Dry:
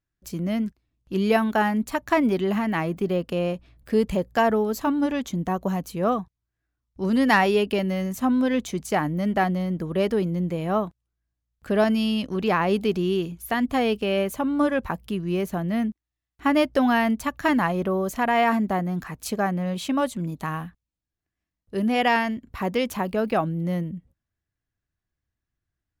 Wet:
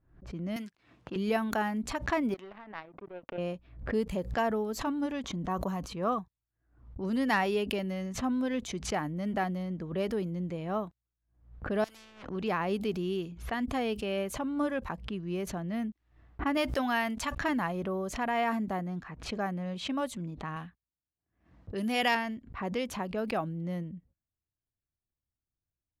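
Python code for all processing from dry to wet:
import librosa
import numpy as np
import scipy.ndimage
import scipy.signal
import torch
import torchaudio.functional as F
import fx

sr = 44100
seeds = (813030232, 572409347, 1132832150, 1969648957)

y = fx.chain(x, sr, fx.highpass(hz=94.0, slope=12),
    fx.tilt_eq(slope=4.5),
    fx.leveller(passes=1), at=(0.56, 1.16))
y = fx.chain(y, sr, fx.bass_treble(bass_db=-14, treble_db=-13),
    fx.power_curve(exponent=2.0), at=(2.34, 3.38))
y = fx.chain(y, sr, fx.peak_eq(hz=1100.0, db=6.5, octaves=0.51),
    fx.sustainer(db_per_s=68.0), at=(5.22, 6.19))
y = fx.chain(y, sr, fx.over_compress(threshold_db=-25.0, ratio=-0.5),
    fx.clip_hard(threshold_db=-25.5),
    fx.spectral_comp(ratio=4.0), at=(11.84, 12.29))
y = fx.chain(y, sr, fx.tilt_shelf(db=-4.5, hz=670.0),
    fx.sustainer(db_per_s=100.0), at=(16.57, 17.35))
y = fx.chain(y, sr, fx.highpass(hz=55.0, slope=12),
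    fx.high_shelf(hz=2400.0, db=11.0), at=(20.56, 22.15))
y = fx.env_lowpass(y, sr, base_hz=990.0, full_db=-20.0)
y = fx.pre_swell(y, sr, db_per_s=110.0)
y = y * librosa.db_to_amplitude(-9.0)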